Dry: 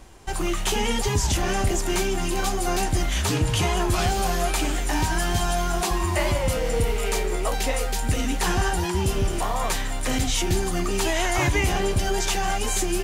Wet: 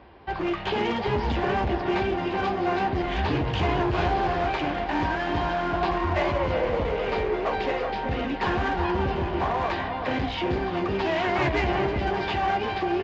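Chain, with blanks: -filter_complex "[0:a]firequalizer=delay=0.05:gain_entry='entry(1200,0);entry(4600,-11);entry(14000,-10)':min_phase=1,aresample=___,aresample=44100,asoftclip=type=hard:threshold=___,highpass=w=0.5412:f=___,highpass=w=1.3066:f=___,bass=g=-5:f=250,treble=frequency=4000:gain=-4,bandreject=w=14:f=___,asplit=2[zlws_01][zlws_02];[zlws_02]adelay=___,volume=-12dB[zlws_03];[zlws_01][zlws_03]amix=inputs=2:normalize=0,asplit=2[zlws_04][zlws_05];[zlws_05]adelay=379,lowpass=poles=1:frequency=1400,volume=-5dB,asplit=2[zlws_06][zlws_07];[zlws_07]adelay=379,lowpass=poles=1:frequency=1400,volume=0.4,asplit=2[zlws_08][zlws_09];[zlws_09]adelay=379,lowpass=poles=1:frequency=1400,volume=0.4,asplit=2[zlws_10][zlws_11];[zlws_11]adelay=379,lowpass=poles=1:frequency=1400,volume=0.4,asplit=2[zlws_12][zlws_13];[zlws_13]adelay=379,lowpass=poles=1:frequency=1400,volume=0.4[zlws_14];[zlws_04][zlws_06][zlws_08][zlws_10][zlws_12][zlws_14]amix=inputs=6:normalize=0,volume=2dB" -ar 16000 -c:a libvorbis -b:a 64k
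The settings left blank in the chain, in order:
11025, -21dB, 51, 51, 1300, 14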